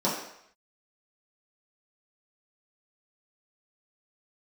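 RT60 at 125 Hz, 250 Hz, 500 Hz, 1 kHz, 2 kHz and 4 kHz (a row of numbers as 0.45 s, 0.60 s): 0.55 s, 0.55 s, 0.70 s, 0.75 s, 0.75 s, 0.70 s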